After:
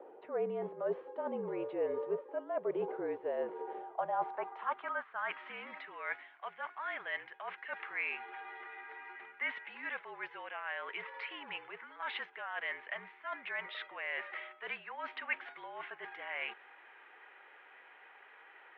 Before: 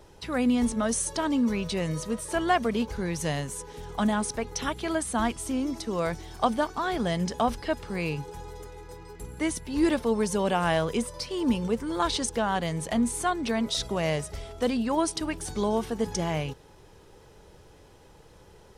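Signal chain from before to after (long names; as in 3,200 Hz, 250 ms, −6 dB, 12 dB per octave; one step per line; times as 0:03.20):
three-way crossover with the lows and the highs turned down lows −17 dB, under 510 Hz, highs −16 dB, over 2,700 Hz
reversed playback
downward compressor 10 to 1, threshold −40 dBFS, peak gain reduction 20.5 dB
reversed playback
single-sideband voice off tune −50 Hz 210–3,500 Hz
band-pass filter sweep 470 Hz → 2,000 Hz, 0:03.45–0:05.58
level +13 dB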